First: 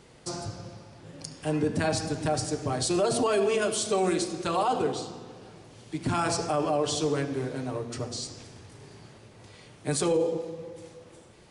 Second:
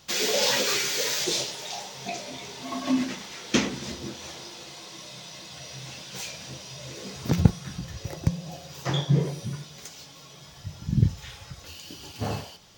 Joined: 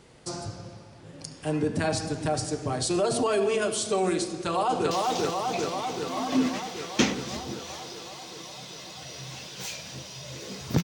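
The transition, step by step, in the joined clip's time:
first
0:04.30–0:04.91: delay throw 390 ms, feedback 75%, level −1.5 dB
0:04.91: continue with second from 0:01.46

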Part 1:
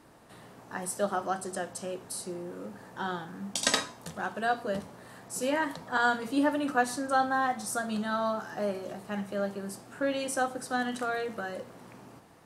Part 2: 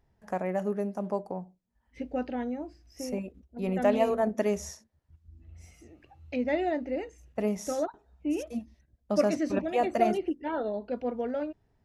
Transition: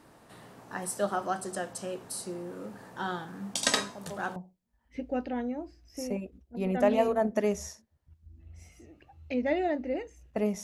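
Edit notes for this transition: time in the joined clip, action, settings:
part 1
0:03.76: mix in part 2 from 0:00.78 0.60 s −11.5 dB
0:04.36: continue with part 2 from 0:01.38

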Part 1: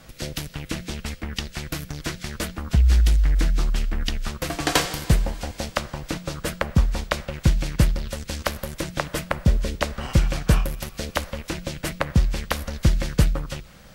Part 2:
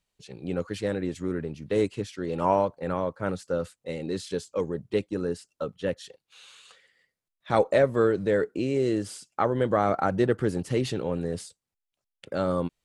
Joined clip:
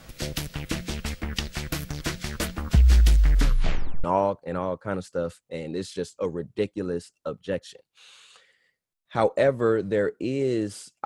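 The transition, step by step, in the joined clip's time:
part 1
0:03.35: tape stop 0.69 s
0:04.04: continue with part 2 from 0:02.39

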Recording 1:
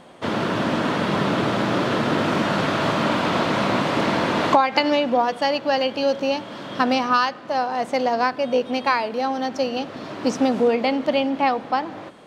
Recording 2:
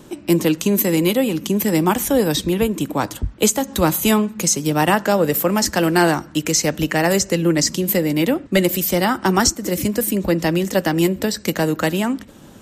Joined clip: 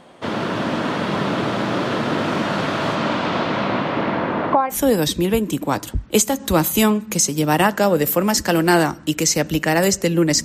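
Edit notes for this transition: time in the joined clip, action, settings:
recording 1
0:02.95–0:04.77: low-pass filter 8,800 Hz → 1,200 Hz
0:04.73: continue with recording 2 from 0:02.01, crossfade 0.08 s

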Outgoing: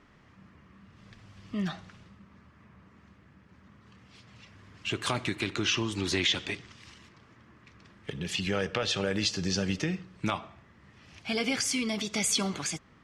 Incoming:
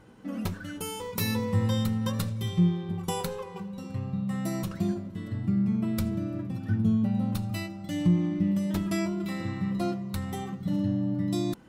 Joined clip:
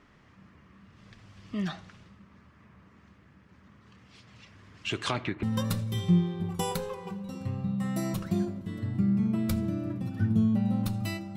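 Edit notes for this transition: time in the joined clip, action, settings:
outgoing
0:04.98–0:05.43: low-pass filter 11,000 Hz → 1,100 Hz
0:05.43: continue with incoming from 0:01.92

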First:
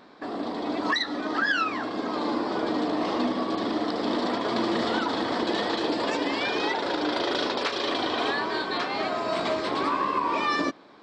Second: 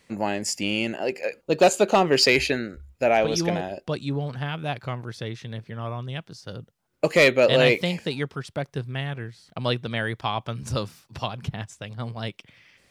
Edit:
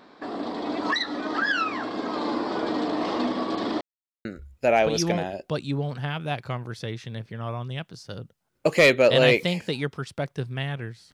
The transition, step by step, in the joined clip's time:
first
0:03.81–0:04.25: silence
0:04.25: continue with second from 0:02.63

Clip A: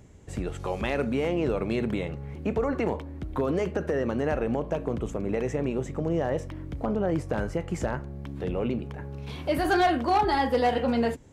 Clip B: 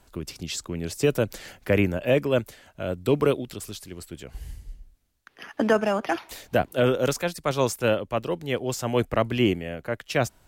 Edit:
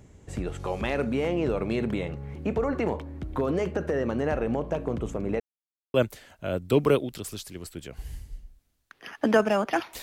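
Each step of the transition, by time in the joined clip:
clip A
0:05.40–0:05.94: silence
0:05.94: continue with clip B from 0:02.30

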